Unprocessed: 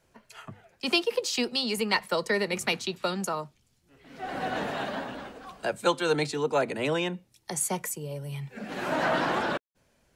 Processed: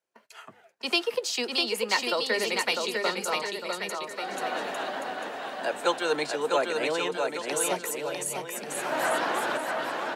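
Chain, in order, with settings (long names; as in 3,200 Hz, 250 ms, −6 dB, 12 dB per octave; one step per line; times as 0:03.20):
noise gate −57 dBFS, range −18 dB
high-pass filter 360 Hz 12 dB per octave
bouncing-ball delay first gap 650 ms, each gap 0.75×, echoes 5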